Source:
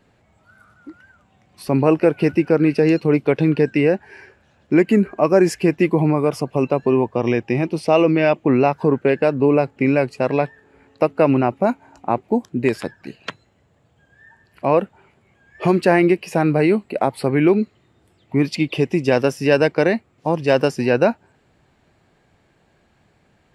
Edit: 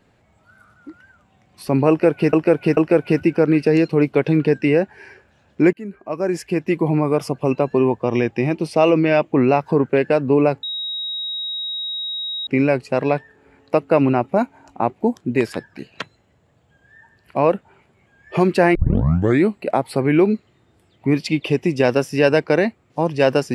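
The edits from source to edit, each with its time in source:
1.89–2.33 loop, 3 plays
4.85–6.26 fade in, from -23 dB
9.75 add tone 3800 Hz -23.5 dBFS 1.84 s
16.03 tape start 0.71 s

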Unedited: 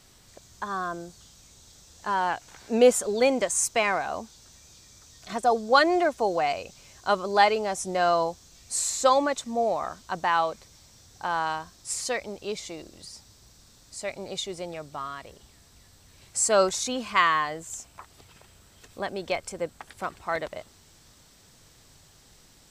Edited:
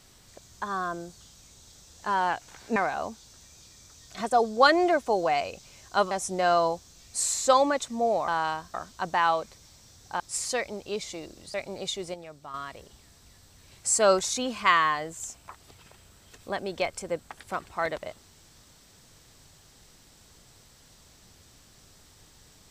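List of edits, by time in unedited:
2.76–3.88 cut
7.23–7.67 cut
11.3–11.76 move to 9.84
13.1–14.04 cut
14.64–15.04 gain -7 dB

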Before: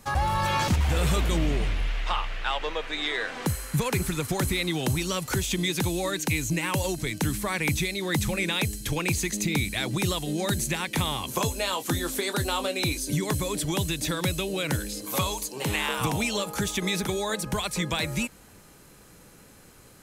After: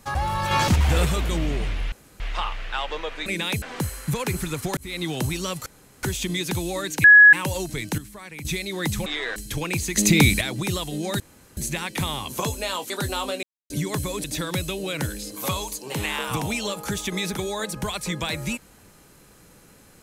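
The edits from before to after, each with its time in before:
0.51–1.05 gain +4.5 dB
1.92 insert room tone 0.28 s
2.98–3.28 swap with 8.35–8.71
4.43–4.7 fade in
5.32 insert room tone 0.37 s
6.33–6.62 bleep 1680 Hz -6.5 dBFS
7.27–7.74 gain -12 dB
9.31–9.76 gain +10 dB
10.55 insert room tone 0.37 s
11.88–12.26 cut
12.79–13.06 mute
13.6–13.94 cut

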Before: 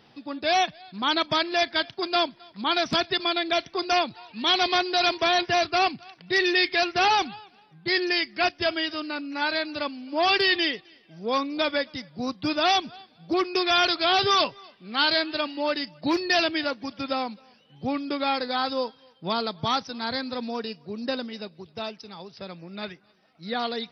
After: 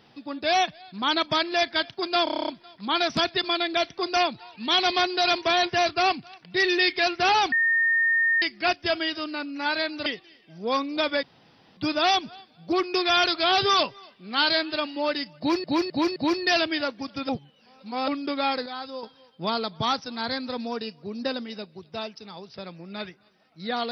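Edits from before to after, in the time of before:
2.24 stutter 0.03 s, 9 plays
7.28–8.18 bleep 1830 Hz -18.5 dBFS
9.82–10.67 cut
11.84–12.38 room tone
15.99–16.25 loop, 4 plays
17.12–17.91 reverse
18.49–18.86 gain -9 dB

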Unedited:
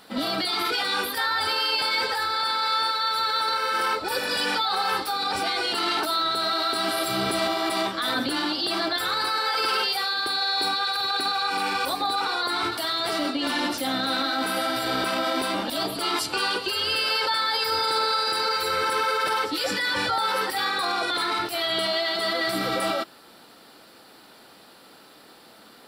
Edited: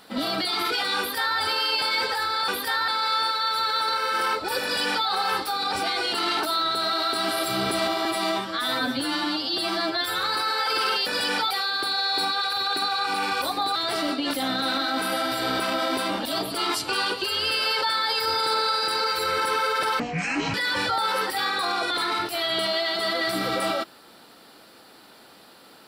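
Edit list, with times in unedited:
0.98–1.38 copy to 2.48
4.23–4.67 copy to 9.94
7.65–9.1 stretch 1.5×
12.19–12.92 cut
13.5–13.78 cut
19.44–19.74 speed 55%

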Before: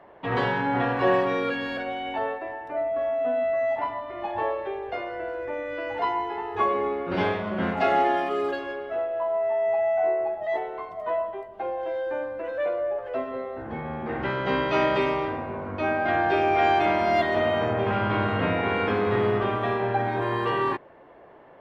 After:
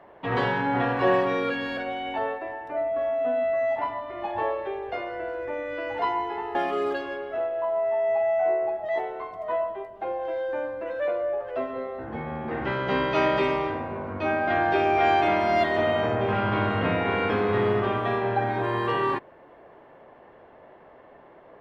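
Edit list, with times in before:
6.55–8.13 cut

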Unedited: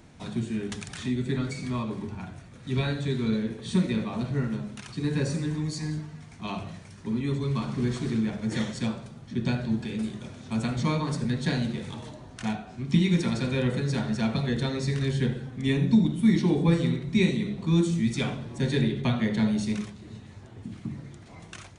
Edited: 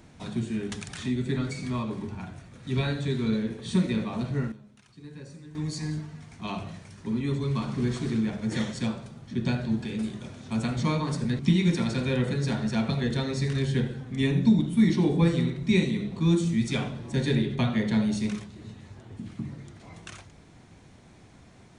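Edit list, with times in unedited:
4.06–6.01 dip -16.5 dB, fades 0.46 s logarithmic
11.39–12.85 cut

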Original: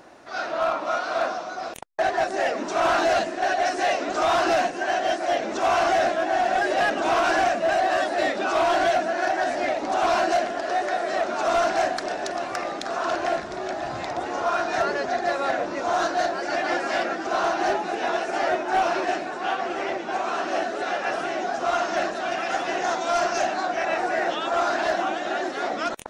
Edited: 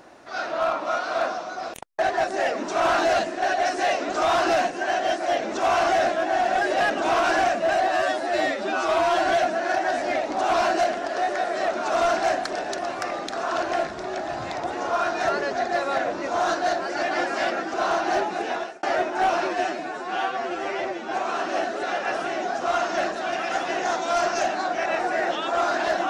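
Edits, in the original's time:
7.88–8.82 stretch 1.5×
17.98–18.36 fade out
19.02–20.1 stretch 1.5×

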